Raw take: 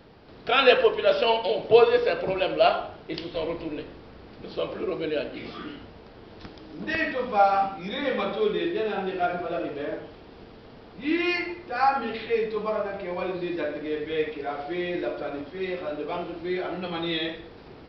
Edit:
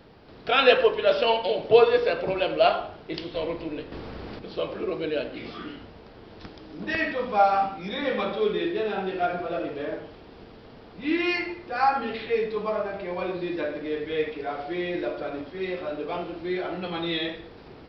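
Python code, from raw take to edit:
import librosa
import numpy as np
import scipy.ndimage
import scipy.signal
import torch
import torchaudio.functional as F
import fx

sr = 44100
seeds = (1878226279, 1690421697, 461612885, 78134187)

y = fx.edit(x, sr, fx.clip_gain(start_s=3.92, length_s=0.47, db=8.5), tone=tone)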